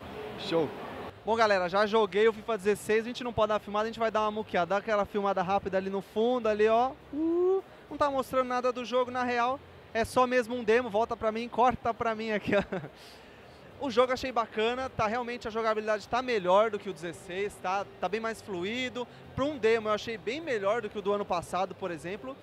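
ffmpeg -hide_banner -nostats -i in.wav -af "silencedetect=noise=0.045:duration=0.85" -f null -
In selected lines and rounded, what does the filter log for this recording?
silence_start: 12.77
silence_end: 13.83 | silence_duration: 1.06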